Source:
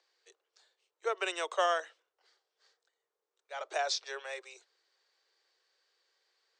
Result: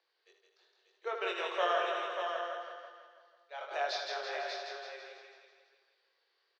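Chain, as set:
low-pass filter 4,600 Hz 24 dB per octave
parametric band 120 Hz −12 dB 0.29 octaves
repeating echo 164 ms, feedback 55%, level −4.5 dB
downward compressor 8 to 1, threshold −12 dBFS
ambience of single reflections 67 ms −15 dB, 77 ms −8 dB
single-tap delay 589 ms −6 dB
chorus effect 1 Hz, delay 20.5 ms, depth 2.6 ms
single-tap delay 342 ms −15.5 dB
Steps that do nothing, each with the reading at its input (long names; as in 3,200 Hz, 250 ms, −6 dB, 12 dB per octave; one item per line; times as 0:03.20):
parametric band 120 Hz: nothing at its input below 320 Hz
downward compressor, threshold −12 dBFS: peak of its input −16.5 dBFS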